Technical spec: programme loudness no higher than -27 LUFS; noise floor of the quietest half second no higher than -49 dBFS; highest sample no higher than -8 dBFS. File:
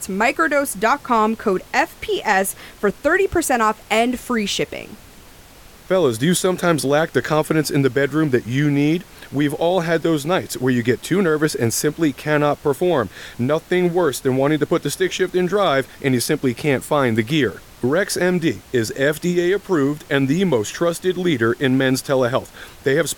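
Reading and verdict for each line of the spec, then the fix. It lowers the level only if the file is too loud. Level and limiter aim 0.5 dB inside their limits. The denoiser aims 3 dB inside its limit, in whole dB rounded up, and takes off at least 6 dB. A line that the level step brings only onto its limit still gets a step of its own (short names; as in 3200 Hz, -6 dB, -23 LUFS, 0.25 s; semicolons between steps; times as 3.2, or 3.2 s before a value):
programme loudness -19.0 LUFS: fail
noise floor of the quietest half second -44 dBFS: fail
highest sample -3.0 dBFS: fail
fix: gain -8.5 dB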